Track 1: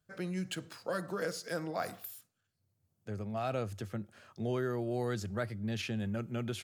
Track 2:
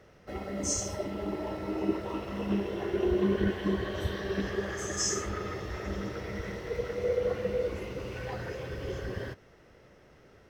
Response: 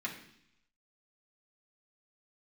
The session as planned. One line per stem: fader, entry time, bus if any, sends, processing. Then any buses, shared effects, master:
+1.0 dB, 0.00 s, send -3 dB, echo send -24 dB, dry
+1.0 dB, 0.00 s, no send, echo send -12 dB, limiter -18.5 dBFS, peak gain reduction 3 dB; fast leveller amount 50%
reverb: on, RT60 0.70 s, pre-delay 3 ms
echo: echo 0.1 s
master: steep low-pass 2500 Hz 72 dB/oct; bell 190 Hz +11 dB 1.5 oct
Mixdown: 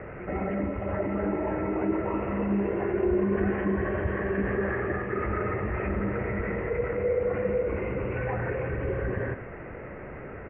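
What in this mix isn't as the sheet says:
stem 1 +1.0 dB -> -8.5 dB; master: missing bell 190 Hz +11 dB 1.5 oct

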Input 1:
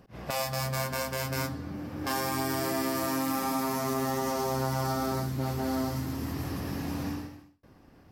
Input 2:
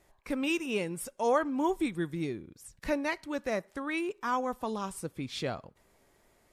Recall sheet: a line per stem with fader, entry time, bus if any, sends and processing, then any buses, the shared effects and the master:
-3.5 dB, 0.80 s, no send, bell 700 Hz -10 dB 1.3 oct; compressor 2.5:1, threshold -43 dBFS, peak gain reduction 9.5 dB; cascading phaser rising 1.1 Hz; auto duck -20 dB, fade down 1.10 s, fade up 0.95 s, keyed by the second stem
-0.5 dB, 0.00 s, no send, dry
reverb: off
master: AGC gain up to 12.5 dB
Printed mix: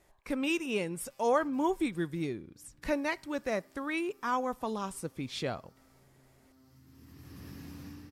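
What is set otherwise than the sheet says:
stem 1: missing cascading phaser rising 1.1 Hz; master: missing AGC gain up to 12.5 dB

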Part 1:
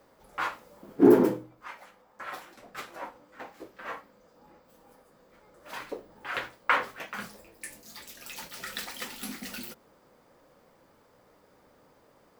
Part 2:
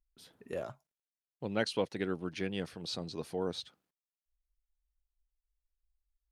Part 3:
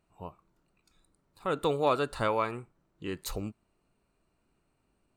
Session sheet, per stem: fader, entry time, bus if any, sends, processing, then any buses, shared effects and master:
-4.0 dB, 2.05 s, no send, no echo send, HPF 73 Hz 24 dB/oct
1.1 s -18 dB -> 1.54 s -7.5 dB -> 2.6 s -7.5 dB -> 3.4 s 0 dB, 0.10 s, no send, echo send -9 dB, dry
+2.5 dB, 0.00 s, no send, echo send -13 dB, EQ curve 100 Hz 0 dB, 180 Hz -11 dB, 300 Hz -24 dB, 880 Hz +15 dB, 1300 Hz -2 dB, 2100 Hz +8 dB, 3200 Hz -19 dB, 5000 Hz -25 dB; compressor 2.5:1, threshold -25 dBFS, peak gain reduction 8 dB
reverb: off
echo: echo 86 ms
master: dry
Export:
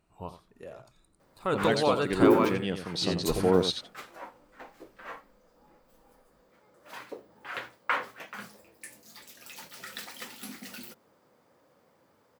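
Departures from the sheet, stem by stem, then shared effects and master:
stem 1: entry 2.05 s -> 1.20 s; stem 2 -18.0 dB -> -6.5 dB; stem 3: missing EQ curve 100 Hz 0 dB, 180 Hz -11 dB, 300 Hz -24 dB, 880 Hz +15 dB, 1300 Hz -2 dB, 2100 Hz +8 dB, 3200 Hz -19 dB, 5000 Hz -25 dB

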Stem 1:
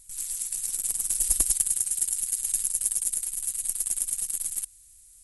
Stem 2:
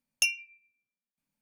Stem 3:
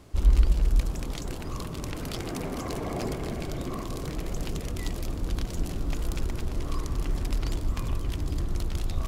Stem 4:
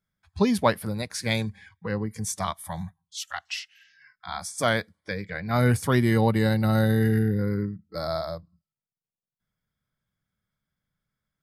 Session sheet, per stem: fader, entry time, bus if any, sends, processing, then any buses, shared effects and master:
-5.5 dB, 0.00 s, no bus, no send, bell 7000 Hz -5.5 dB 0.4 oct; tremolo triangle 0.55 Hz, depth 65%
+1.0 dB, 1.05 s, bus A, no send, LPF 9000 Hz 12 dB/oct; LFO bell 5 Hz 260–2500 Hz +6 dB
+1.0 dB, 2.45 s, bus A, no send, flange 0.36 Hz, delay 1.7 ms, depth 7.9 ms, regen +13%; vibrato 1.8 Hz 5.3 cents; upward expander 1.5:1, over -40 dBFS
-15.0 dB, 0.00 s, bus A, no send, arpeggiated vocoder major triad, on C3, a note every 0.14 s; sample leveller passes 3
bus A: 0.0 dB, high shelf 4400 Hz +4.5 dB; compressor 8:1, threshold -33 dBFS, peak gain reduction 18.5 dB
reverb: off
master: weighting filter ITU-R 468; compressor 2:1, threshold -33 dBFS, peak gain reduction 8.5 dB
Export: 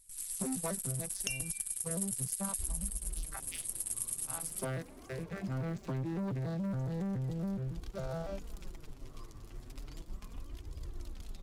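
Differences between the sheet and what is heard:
stem 3 +1.0 dB -> -6.5 dB; master: missing weighting filter ITU-R 468

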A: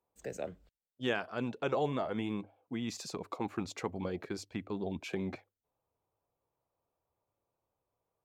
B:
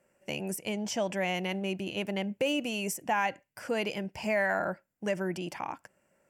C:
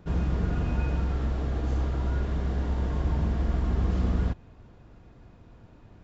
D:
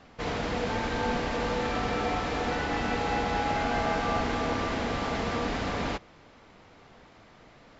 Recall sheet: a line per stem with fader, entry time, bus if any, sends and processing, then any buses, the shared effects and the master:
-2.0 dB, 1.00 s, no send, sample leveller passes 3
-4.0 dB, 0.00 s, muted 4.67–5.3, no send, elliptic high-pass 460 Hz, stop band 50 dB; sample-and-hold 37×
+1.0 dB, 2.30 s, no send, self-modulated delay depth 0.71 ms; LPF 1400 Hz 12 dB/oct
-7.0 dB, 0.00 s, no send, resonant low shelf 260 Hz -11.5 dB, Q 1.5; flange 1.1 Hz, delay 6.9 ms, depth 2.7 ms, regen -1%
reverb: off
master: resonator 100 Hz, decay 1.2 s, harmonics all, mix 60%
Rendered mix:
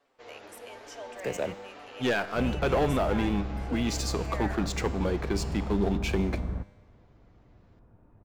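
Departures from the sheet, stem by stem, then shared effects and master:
stem A -2.0 dB -> +5.5 dB; stem B: missing sample-and-hold 37×

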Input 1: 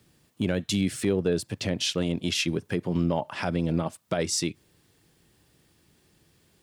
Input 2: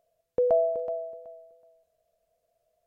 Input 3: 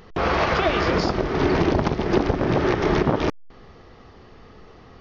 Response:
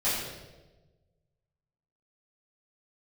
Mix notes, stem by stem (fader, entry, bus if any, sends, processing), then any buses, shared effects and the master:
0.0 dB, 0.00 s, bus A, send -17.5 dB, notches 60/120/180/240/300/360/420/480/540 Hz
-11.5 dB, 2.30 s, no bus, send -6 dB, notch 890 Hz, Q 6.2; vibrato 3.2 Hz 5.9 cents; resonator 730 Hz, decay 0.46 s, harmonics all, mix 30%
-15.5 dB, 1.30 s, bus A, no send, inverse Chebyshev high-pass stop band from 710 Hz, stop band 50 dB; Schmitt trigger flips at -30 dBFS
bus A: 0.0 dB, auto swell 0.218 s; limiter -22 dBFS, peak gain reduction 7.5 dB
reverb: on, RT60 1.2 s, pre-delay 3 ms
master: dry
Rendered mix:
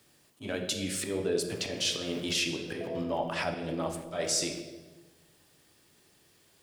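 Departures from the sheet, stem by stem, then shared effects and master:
stem 2 -11.5 dB -> -21.5 dB; master: extra tone controls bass -9 dB, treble +2 dB

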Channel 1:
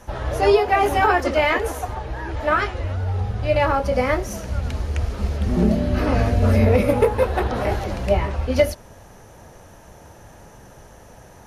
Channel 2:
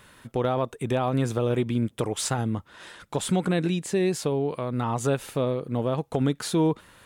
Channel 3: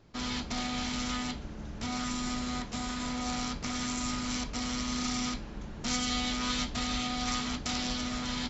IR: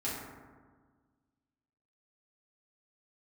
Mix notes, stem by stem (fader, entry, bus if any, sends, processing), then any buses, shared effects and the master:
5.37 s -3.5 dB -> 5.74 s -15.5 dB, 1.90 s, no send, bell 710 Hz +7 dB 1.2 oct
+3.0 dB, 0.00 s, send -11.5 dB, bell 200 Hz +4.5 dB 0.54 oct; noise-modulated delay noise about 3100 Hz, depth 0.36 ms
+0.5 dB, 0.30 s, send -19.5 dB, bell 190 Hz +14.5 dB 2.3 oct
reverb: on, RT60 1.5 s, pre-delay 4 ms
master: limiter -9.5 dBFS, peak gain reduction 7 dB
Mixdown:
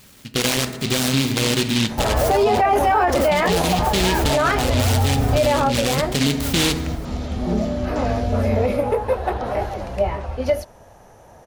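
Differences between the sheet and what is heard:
stem 1 -3.5 dB -> +7.0 dB; stem 3 +0.5 dB -> -10.0 dB

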